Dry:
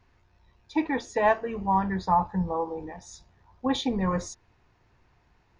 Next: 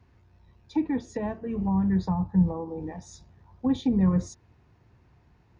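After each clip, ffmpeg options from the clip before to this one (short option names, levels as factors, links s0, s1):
-filter_complex "[0:a]highpass=69,lowshelf=f=380:g=12,acrossover=split=310[s0][s1];[s1]acompressor=threshold=0.0251:ratio=8[s2];[s0][s2]amix=inputs=2:normalize=0,volume=0.75"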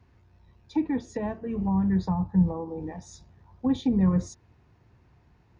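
-af anull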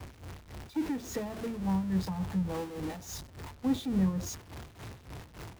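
-af "aeval=exprs='val(0)+0.5*0.0316*sgn(val(0))':c=same,tremolo=f=3.5:d=0.57,agate=range=0.0224:threshold=0.0158:ratio=3:detection=peak,volume=0.562"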